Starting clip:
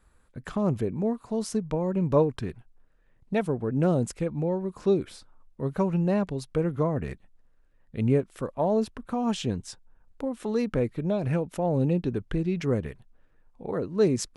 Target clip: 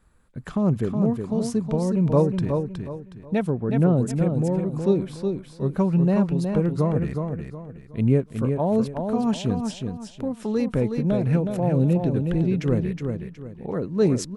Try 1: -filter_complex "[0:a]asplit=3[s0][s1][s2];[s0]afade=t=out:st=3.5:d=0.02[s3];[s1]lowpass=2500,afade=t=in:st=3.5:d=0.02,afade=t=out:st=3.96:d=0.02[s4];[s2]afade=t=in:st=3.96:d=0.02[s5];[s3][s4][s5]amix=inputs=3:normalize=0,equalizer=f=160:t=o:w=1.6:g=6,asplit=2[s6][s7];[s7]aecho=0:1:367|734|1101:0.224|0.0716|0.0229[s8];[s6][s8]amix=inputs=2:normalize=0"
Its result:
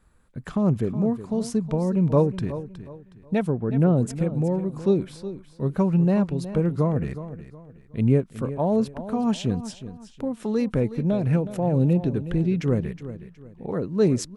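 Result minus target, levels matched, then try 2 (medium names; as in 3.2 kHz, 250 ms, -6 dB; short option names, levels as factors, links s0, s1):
echo-to-direct -7.5 dB
-filter_complex "[0:a]asplit=3[s0][s1][s2];[s0]afade=t=out:st=3.5:d=0.02[s3];[s1]lowpass=2500,afade=t=in:st=3.5:d=0.02,afade=t=out:st=3.96:d=0.02[s4];[s2]afade=t=in:st=3.96:d=0.02[s5];[s3][s4][s5]amix=inputs=3:normalize=0,equalizer=f=160:t=o:w=1.6:g=6,asplit=2[s6][s7];[s7]aecho=0:1:367|734|1101|1468:0.531|0.17|0.0544|0.0174[s8];[s6][s8]amix=inputs=2:normalize=0"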